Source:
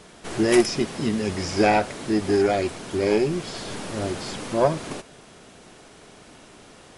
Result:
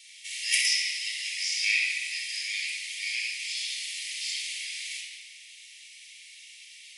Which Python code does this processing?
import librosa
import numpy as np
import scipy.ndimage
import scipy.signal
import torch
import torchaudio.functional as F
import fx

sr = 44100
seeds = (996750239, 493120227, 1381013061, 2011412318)

y = scipy.signal.sosfilt(scipy.signal.butter(16, 2000.0, 'highpass', fs=sr, output='sos'), x)
y = fx.room_shoebox(y, sr, seeds[0], volume_m3=3200.0, walls='mixed', distance_m=4.4)